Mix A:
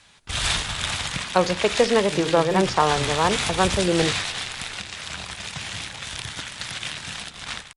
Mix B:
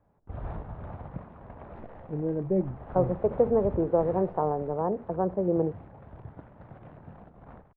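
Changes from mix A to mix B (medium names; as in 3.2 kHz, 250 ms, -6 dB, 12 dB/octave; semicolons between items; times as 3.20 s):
speech: entry +1.60 s; second sound +5.5 dB; master: add four-pole ladder low-pass 880 Hz, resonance 20%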